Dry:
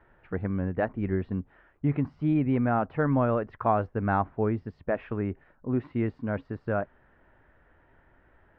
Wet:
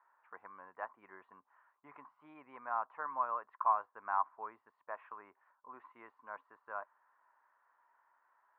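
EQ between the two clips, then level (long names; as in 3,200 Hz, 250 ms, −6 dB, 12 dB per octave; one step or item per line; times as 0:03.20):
four-pole ladder band-pass 1,100 Hz, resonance 75%
0.0 dB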